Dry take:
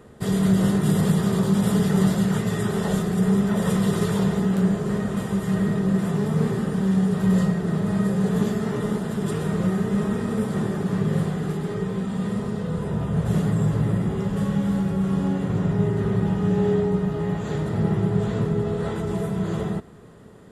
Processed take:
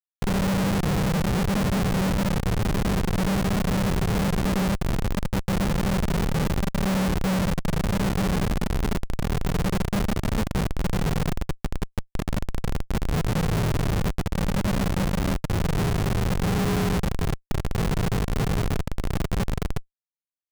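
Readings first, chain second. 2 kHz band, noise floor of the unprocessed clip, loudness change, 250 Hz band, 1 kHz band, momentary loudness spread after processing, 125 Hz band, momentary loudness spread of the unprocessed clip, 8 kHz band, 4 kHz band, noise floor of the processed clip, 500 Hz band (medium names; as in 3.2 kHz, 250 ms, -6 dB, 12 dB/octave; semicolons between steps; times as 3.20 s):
+3.5 dB, -30 dBFS, -2.5 dB, -5.0 dB, +2.5 dB, 6 LU, -2.0 dB, 6 LU, +2.5 dB, +5.0 dB, -74 dBFS, -4.0 dB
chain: resampled via 16 kHz; Schmitt trigger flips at -19.5 dBFS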